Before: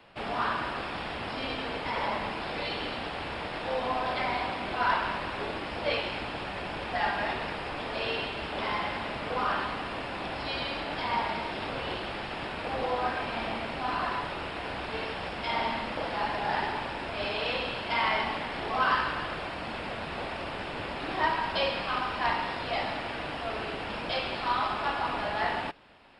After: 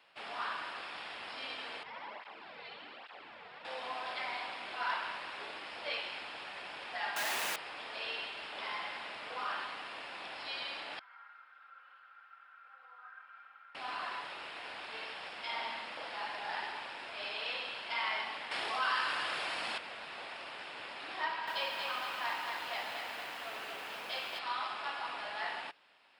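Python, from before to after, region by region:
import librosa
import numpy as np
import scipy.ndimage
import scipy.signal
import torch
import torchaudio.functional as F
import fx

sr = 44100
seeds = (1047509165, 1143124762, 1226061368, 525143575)

y = fx.chain(x, sr, fx.spacing_loss(db_at_10k=21),
    fx.flanger_cancel(hz=1.2, depth_ms=3.7), at=(1.83, 3.65))
y = fx.chain(y, sr, fx.highpass(hz=120.0, slope=24),
    fx.quant_companded(bits=2), at=(7.16, 7.56))
y = fx.chain(y, sr, fx.bandpass_q(hz=1400.0, q=17.0),
    fx.comb(ms=3.8, depth=0.74), at=(10.99, 13.75))
y = fx.chain(y, sr, fx.high_shelf(hz=5600.0, db=9.0),
    fx.env_flatten(amount_pct=50), at=(18.51, 19.78))
y = fx.chain(y, sr, fx.high_shelf(hz=8600.0, db=-10.0),
    fx.echo_crushed(ms=234, feedback_pct=55, bits=8, wet_db=-4), at=(21.24, 24.39))
y = fx.lowpass(y, sr, hz=1500.0, slope=6)
y = np.diff(y, prepend=0.0)
y = y * librosa.db_to_amplitude(9.0)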